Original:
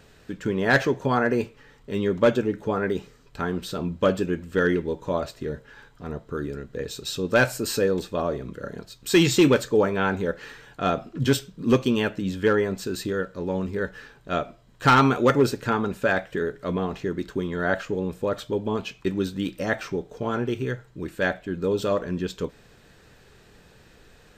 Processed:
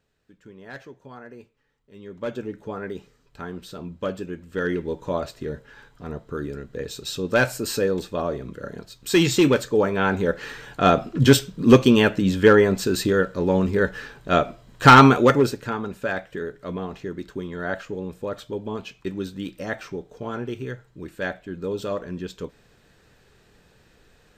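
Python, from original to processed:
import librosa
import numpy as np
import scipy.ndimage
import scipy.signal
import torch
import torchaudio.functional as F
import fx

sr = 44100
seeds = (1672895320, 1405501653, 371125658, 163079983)

y = fx.gain(x, sr, db=fx.line((1.91, -20.0), (2.43, -7.0), (4.39, -7.0), (4.93, 0.0), (9.76, 0.0), (10.65, 7.0), (15.04, 7.0), (15.71, -4.0)))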